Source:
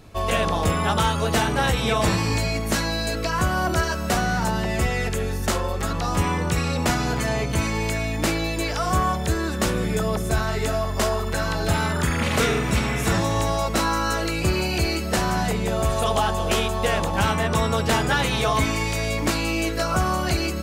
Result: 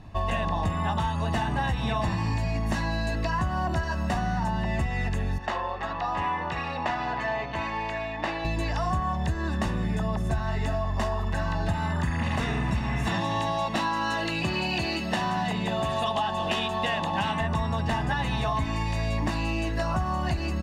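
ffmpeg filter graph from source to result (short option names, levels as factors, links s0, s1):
-filter_complex "[0:a]asettb=1/sr,asplit=3[s0][s1][s2];[s0]atrim=end=5.384[s3];[s1]atrim=start=5.38:end=8.45,asetpts=PTS-STARTPTS,afade=t=in:d=0.004:c=qsin,afade=t=out:st=3.066:d=0.004:c=qsin,acrossover=split=370 4500:gain=0.141 1 0.224[s4][s5][s6];[s4][s5][s6]amix=inputs=3:normalize=0,adynamicsmooth=sensitivity=6:basefreq=6800[s7];[s2]atrim=start=8.446[s8];[s3][s7]acrossfade=d=0.004:c1=hsin:c2=qsin[s9];[s9][s8]acrossfade=d=0.004:c1=qsin:c2=hsin,asettb=1/sr,asplit=3[s10][s11][s12];[s10]atrim=end=13.074[s13];[s11]atrim=start=13.07:end=17.41,asetpts=PTS-STARTPTS,afade=t=in:d=0.004:c=qsin,afade=t=out:st=4.336:d=0.004:c=qsin,highpass=160,equalizer=f=3300:t=o:w=0.84:g=7.5[s14];[s12]atrim=start=17.406[s15];[s13][s14]acrossfade=d=0.004:c1=hsin:c2=qsin[s16];[s16][s15]acrossfade=d=0.004:c1=qsin:c2=hsin,aemphasis=mode=reproduction:type=75fm,aecho=1:1:1.1:0.64,acompressor=threshold=0.0794:ratio=6,volume=0.841"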